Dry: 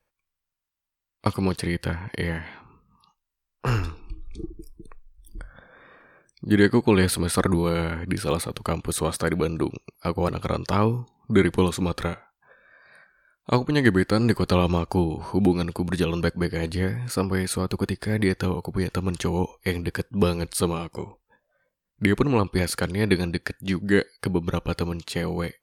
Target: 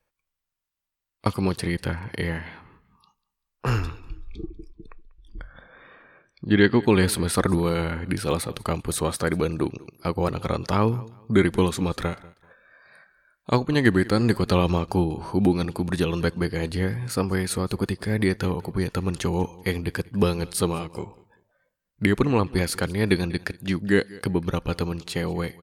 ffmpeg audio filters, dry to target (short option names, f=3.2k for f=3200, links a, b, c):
-filter_complex "[0:a]asettb=1/sr,asplit=3[a][b][c];[a]atrim=end=3.874[d];[b]atrim=start=3.87:end=6.83,asetpts=PTS-STARTPTS,afade=t=in:d=0.004:c=qsin,afade=t=out:st=2.956:d=0.004:c=qsin,lowpass=f=3.3k:t=q:w=1.6[e];[c]atrim=start=6.826[f];[d][e]acrossfade=d=0.004:c1=hsin:c2=qsin[g];[g][f]acrossfade=d=0.004:c1=qsin:c2=hsin,asplit=2[h][i];[i]aecho=0:1:193|386:0.0794|0.023[j];[h][j]amix=inputs=2:normalize=0"